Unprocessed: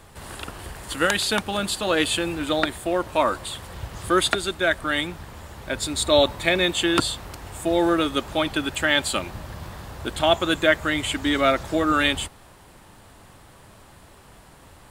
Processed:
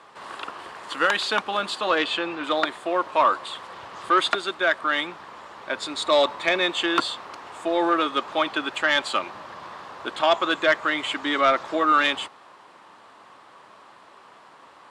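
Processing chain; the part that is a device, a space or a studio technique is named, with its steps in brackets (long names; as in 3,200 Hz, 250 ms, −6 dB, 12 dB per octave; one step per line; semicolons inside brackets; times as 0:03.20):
intercom (band-pass filter 300–4,600 Hz; parametric band 1,100 Hz +8 dB 0.57 octaves; soft clipping −8.5 dBFS, distortion −19 dB)
0:01.98–0:02.44: low-pass filter 5,600 Hz 12 dB per octave
low-shelf EQ 320 Hz −3.5 dB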